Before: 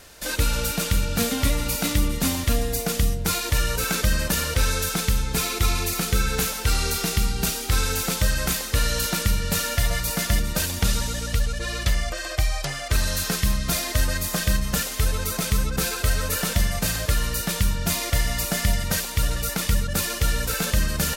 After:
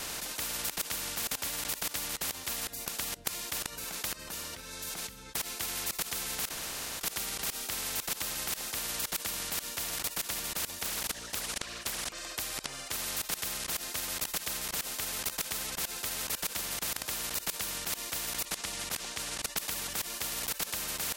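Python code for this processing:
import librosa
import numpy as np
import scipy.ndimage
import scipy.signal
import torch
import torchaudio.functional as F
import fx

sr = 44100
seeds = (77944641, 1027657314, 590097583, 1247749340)

y = fx.doppler_dist(x, sr, depth_ms=0.83, at=(10.85, 12.38))
y = fx.lowpass(y, sr, hz=6300.0, slope=12, at=(18.45, 19.57))
y = fx.edit(y, sr, fx.fade_out_to(start_s=1.68, length_s=3.67, floor_db=-22.0),
    fx.room_tone_fill(start_s=6.49, length_s=0.52), tone=tone)
y = fx.low_shelf(y, sr, hz=250.0, db=4.0)
y = fx.level_steps(y, sr, step_db=24)
y = fx.spectral_comp(y, sr, ratio=10.0)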